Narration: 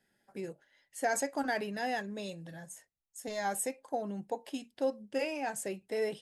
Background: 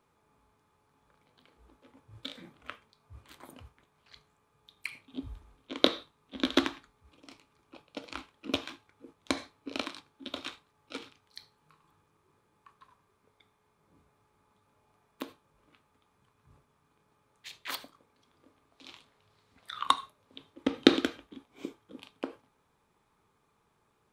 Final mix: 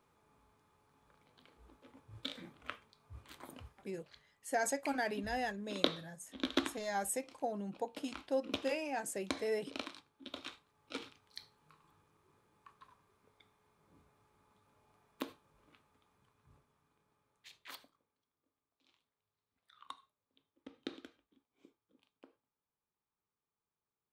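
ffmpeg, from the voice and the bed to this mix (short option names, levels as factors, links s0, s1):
-filter_complex "[0:a]adelay=3500,volume=0.708[s0];[1:a]volume=1.78,afade=t=out:st=3.66:d=0.61:silence=0.473151,afade=t=in:st=10.41:d=0.64:silence=0.501187,afade=t=out:st=15.57:d=2.71:silence=0.0749894[s1];[s0][s1]amix=inputs=2:normalize=0"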